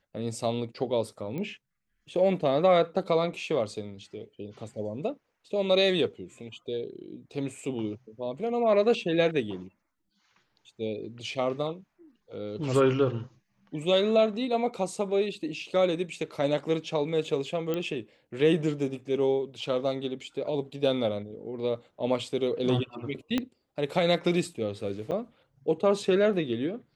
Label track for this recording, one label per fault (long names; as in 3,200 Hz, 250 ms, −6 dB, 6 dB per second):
1.380000	1.380000	click −24 dBFS
17.740000	17.740000	click −17 dBFS
23.380000	23.380000	click −14 dBFS
25.110000	25.120000	drop-out 7.9 ms